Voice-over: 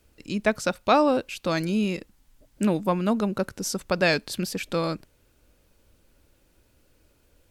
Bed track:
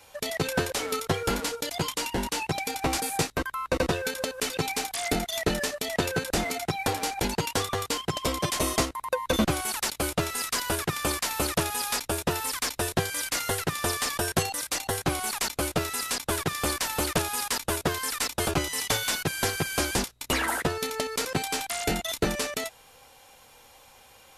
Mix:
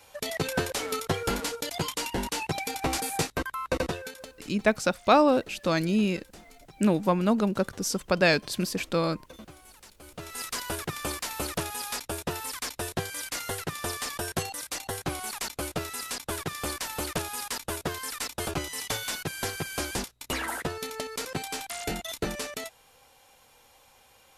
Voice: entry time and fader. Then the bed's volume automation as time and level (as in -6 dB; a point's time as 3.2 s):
4.20 s, 0.0 dB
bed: 3.74 s -1.5 dB
4.64 s -23 dB
10 s -23 dB
10.4 s -5 dB